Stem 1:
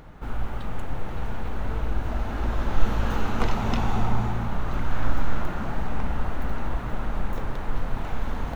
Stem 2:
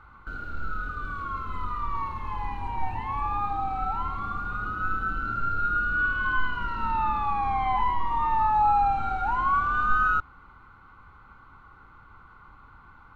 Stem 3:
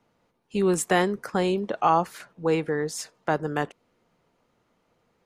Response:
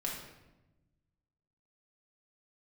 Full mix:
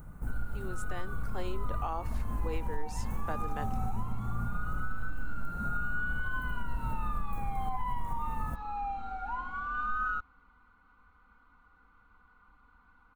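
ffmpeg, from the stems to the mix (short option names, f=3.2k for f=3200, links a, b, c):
-filter_complex "[0:a]firequalizer=gain_entry='entry(180,0);entry(320,-9);entry(3400,-24);entry(8600,6)':delay=0.05:min_phase=1,acompressor=threshold=-27dB:ratio=6,volume=-0.5dB[a];[1:a]aecho=1:1:4.1:0.94,volume=-14dB[b];[2:a]highpass=290,volume=-13dB,afade=t=in:st=1.21:d=0.21:silence=0.446684[c];[a][b][c]amix=inputs=3:normalize=0,alimiter=limit=-22.5dB:level=0:latency=1:release=83"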